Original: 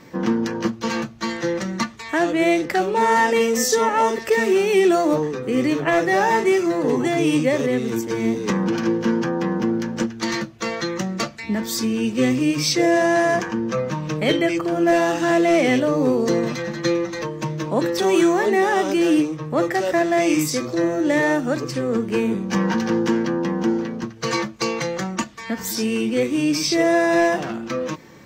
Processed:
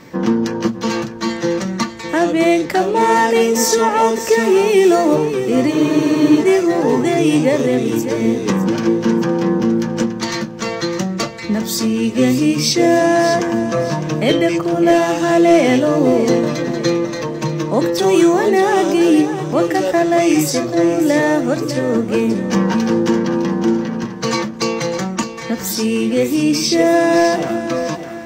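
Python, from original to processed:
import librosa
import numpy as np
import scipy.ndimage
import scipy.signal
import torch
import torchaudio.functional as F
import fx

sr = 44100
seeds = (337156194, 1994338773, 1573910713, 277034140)

p1 = x + fx.echo_feedback(x, sr, ms=607, feedback_pct=37, wet_db=-11.0, dry=0)
p2 = fx.dynamic_eq(p1, sr, hz=1800.0, q=1.0, threshold_db=-36.0, ratio=4.0, max_db=-4)
p3 = fx.spec_freeze(p2, sr, seeds[0], at_s=5.73, hold_s=0.67)
y = p3 * librosa.db_to_amplitude(5.0)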